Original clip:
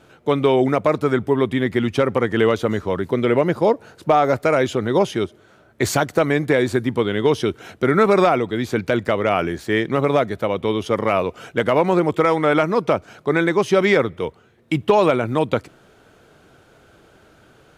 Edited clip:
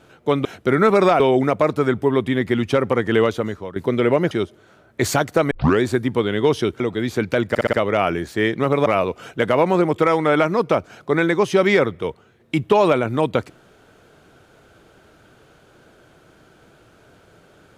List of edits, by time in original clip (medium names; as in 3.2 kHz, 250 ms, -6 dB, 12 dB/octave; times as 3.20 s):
2.49–3.01 s: fade out, to -14.5 dB
3.56–5.12 s: delete
6.32 s: tape start 0.30 s
7.61–8.36 s: move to 0.45 s
9.05 s: stutter 0.06 s, 5 plays
10.18–11.04 s: delete